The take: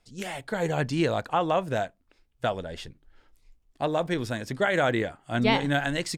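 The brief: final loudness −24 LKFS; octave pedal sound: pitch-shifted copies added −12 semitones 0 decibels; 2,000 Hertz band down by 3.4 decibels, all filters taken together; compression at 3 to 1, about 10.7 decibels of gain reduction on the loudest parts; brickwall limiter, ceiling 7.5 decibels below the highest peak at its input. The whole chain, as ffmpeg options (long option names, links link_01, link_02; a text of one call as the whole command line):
ffmpeg -i in.wav -filter_complex "[0:a]equalizer=frequency=2000:width_type=o:gain=-4.5,acompressor=threshold=-34dB:ratio=3,alimiter=level_in=4dB:limit=-24dB:level=0:latency=1,volume=-4dB,asplit=2[link_01][link_02];[link_02]asetrate=22050,aresample=44100,atempo=2,volume=0dB[link_03];[link_01][link_03]amix=inputs=2:normalize=0,volume=12dB" out.wav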